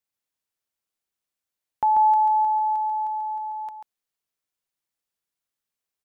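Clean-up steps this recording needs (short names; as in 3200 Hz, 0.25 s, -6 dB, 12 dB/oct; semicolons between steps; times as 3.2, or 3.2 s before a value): inverse comb 0.139 s -5.5 dB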